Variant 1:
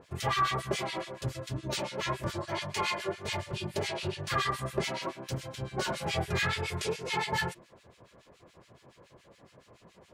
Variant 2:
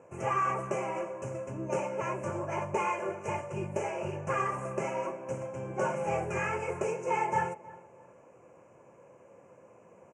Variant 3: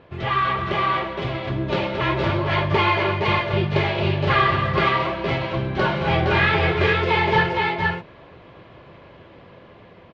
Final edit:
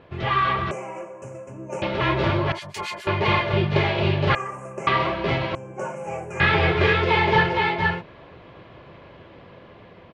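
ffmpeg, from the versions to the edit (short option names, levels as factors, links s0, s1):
-filter_complex "[1:a]asplit=3[s0][s1][s2];[2:a]asplit=5[s3][s4][s5][s6][s7];[s3]atrim=end=0.712[s8];[s0]atrim=start=0.708:end=1.822[s9];[s4]atrim=start=1.818:end=2.522[s10];[0:a]atrim=start=2.518:end=3.072[s11];[s5]atrim=start=3.068:end=4.352[s12];[s1]atrim=start=4.348:end=4.872[s13];[s6]atrim=start=4.868:end=5.552[s14];[s2]atrim=start=5.548:end=6.402[s15];[s7]atrim=start=6.398[s16];[s8][s9]acrossfade=d=0.004:c1=hsin:c2=hsin[s17];[s17][s10]acrossfade=d=0.004:c1=hsin:c2=hsin[s18];[s18][s11]acrossfade=d=0.004:c1=hsin:c2=hsin[s19];[s19][s12]acrossfade=d=0.004:c1=hsin:c2=hsin[s20];[s20][s13]acrossfade=d=0.004:c1=hsin:c2=hsin[s21];[s21][s14]acrossfade=d=0.004:c1=hsin:c2=hsin[s22];[s22][s15]acrossfade=d=0.004:c1=hsin:c2=hsin[s23];[s23][s16]acrossfade=d=0.004:c1=hsin:c2=hsin"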